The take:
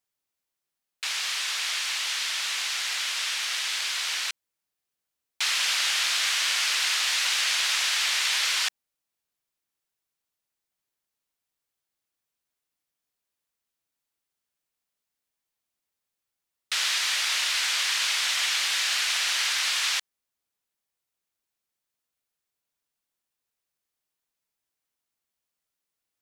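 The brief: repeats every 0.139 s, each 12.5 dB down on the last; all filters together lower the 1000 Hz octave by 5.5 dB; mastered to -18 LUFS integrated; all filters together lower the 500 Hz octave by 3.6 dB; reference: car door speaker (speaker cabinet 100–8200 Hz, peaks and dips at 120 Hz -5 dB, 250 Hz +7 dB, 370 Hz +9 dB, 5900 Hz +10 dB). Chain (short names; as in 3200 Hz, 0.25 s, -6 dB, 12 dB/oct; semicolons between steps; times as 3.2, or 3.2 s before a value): speaker cabinet 100–8200 Hz, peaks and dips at 120 Hz -5 dB, 250 Hz +7 dB, 370 Hz +9 dB, 5900 Hz +10 dB; bell 500 Hz -4.5 dB; bell 1000 Hz -7 dB; feedback echo 0.139 s, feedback 24%, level -12.5 dB; gain +3.5 dB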